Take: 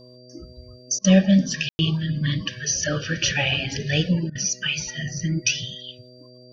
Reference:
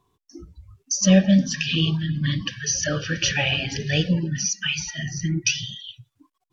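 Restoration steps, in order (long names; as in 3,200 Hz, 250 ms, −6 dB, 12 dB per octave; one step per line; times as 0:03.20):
hum removal 124.8 Hz, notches 5
notch filter 4,700 Hz, Q 30
ambience match 0:01.69–0:01.79
repair the gap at 0:00.99/0:04.30, 52 ms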